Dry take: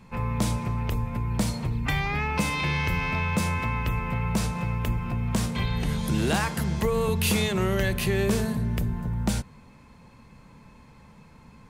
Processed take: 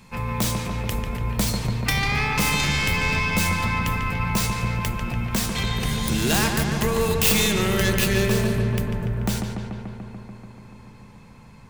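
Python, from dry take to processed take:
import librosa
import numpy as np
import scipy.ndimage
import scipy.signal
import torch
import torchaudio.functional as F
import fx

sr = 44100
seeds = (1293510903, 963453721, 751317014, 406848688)

y = fx.tracing_dist(x, sr, depth_ms=0.2)
y = fx.high_shelf(y, sr, hz=2500.0, db=fx.steps((0.0, 11.5), (8.25, 5.5)))
y = fx.echo_filtered(y, sr, ms=145, feedback_pct=80, hz=3400.0, wet_db=-5)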